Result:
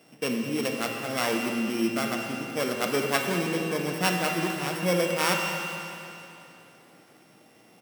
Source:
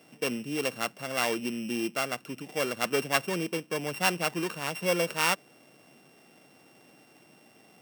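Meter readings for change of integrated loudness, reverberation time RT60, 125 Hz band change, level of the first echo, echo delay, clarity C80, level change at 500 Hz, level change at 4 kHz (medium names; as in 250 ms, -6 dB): +2.5 dB, 2.9 s, +6.0 dB, -13.5 dB, 208 ms, 3.0 dB, +3.0 dB, +2.0 dB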